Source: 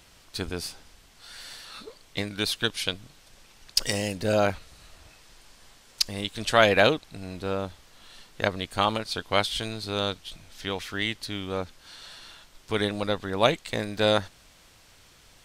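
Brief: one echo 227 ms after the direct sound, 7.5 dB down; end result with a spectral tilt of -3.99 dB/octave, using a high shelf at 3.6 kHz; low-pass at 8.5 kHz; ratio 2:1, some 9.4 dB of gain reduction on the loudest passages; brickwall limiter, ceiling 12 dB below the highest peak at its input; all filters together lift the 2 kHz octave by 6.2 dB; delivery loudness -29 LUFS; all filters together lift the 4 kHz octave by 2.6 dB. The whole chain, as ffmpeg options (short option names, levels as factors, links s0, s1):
-af "lowpass=8500,equalizer=f=2000:t=o:g=8.5,highshelf=f=3600:g=-4,equalizer=f=4000:t=o:g=3,acompressor=threshold=0.0398:ratio=2,alimiter=limit=0.119:level=0:latency=1,aecho=1:1:227:0.422,volume=1.58"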